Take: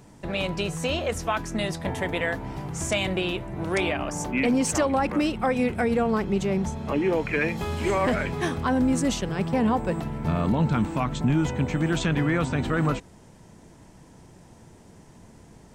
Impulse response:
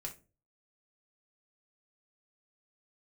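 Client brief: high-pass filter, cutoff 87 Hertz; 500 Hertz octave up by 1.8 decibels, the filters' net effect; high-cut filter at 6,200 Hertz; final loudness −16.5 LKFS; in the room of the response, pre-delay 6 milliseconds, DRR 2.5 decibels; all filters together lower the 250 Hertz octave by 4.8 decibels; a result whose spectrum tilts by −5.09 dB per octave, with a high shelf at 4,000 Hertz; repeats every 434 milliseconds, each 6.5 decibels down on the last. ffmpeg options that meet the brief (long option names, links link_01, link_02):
-filter_complex "[0:a]highpass=87,lowpass=6200,equalizer=frequency=250:width_type=o:gain=-7.5,equalizer=frequency=500:width_type=o:gain=4,highshelf=frequency=4000:gain=5.5,aecho=1:1:434|868|1302|1736|2170|2604:0.473|0.222|0.105|0.0491|0.0231|0.0109,asplit=2[link_01][link_02];[1:a]atrim=start_sample=2205,adelay=6[link_03];[link_02][link_03]afir=irnorm=-1:irlink=0,volume=-0.5dB[link_04];[link_01][link_04]amix=inputs=2:normalize=0,volume=6.5dB"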